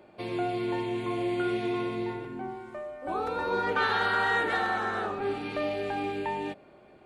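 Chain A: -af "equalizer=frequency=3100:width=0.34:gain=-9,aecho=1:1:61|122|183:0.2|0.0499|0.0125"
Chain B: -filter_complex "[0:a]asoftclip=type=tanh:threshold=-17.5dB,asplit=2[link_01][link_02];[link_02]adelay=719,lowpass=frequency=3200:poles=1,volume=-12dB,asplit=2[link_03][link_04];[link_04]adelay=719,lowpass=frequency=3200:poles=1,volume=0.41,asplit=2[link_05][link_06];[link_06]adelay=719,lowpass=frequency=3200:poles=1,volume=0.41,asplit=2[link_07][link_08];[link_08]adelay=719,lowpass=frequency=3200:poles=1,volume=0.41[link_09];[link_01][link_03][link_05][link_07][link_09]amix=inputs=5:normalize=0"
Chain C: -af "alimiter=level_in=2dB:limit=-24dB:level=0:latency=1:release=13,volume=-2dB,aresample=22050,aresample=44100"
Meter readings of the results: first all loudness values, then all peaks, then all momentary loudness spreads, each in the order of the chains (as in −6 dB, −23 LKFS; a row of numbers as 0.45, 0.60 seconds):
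−33.5, −30.5, −34.0 LKFS; −19.0, −18.0, −26.0 dBFS; 9, 11, 6 LU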